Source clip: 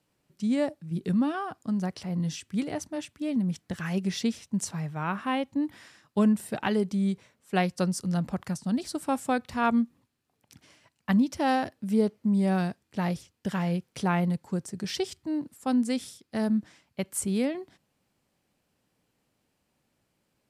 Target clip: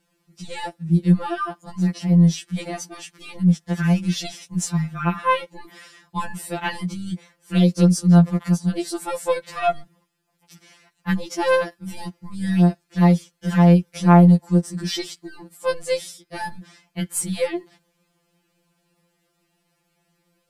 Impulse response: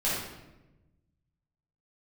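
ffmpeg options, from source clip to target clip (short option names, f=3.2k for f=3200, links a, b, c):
-af "aeval=exprs='0.282*(cos(1*acos(clip(val(0)/0.282,-1,1)))-cos(1*PI/2))+0.01*(cos(2*acos(clip(val(0)/0.282,-1,1)))-cos(2*PI/2))+0.00224*(cos(6*acos(clip(val(0)/0.282,-1,1)))-cos(6*PI/2))':c=same,afftfilt=real='re*2.83*eq(mod(b,8),0)':imag='im*2.83*eq(mod(b,8),0)':win_size=2048:overlap=0.75,volume=9dB"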